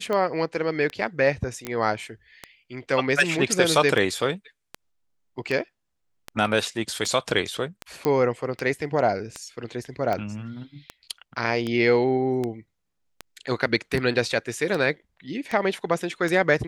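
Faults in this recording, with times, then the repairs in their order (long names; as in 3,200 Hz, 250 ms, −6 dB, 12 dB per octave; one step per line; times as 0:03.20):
scratch tick 78 rpm −15 dBFS
0:01.65: click −16 dBFS
0:08.05: click −11 dBFS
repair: click removal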